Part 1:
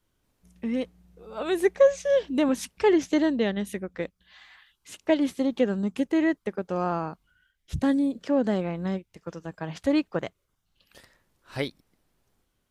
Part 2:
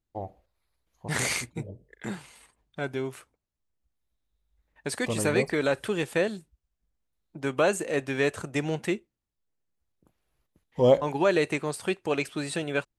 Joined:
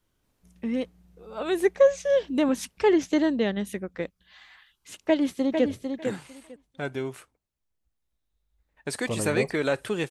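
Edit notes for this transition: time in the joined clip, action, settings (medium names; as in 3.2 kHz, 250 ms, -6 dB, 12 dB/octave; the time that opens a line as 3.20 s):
part 1
5.07–5.66 s: echo throw 450 ms, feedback 15%, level -6 dB
5.66 s: go over to part 2 from 1.65 s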